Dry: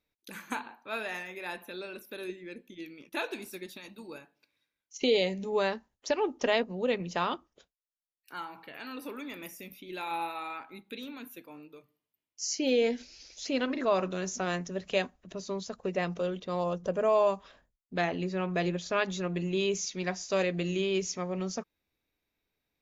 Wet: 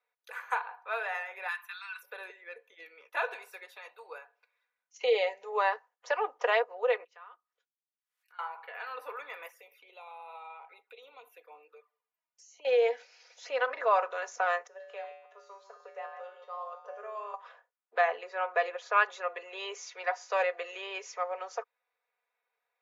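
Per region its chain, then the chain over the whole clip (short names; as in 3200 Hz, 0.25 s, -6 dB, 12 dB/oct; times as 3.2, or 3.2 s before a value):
1.48–2.03 steep high-pass 990 Hz 48 dB/oct + expander -54 dBFS + high shelf 2600 Hz +8 dB
7.04–8.39 treble ducked by the level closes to 1800 Hz, closed at -31 dBFS + passive tone stack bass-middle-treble 6-0-2 + backwards sustainer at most 95 dB/s
9.48–12.65 high shelf 8600 Hz -2 dB + compressor 8:1, threshold -41 dBFS + envelope flanger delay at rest 3.6 ms, full sweep at -44 dBFS
14.67–17.34 reverse delay 0.118 s, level -10 dB + resonator 82 Hz, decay 0.63 s, harmonics odd, mix 90% + three-band squash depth 40%
whole clip: elliptic high-pass 440 Hz, stop band 80 dB; three-band isolator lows -20 dB, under 590 Hz, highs -18 dB, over 2000 Hz; comb 4.1 ms, depth 53%; gain +7 dB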